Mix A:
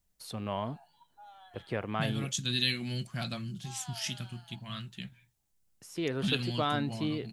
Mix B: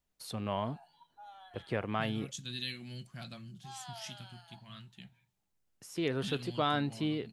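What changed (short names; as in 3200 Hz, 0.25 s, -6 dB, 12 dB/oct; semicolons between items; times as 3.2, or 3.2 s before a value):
second voice -10.5 dB; reverb: on, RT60 0.65 s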